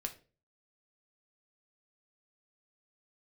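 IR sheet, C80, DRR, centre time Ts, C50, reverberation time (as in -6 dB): 19.5 dB, 4.5 dB, 8 ms, 14.0 dB, 0.35 s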